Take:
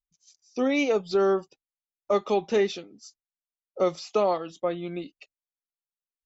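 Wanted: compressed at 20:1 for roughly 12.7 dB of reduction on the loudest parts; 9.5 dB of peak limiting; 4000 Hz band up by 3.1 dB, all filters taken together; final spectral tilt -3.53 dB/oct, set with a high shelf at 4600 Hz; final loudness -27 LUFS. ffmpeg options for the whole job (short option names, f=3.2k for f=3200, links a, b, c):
-af "equalizer=f=4k:t=o:g=6,highshelf=f=4.6k:g=-4.5,acompressor=threshold=-31dB:ratio=20,volume=13dB,alimiter=limit=-16dB:level=0:latency=1"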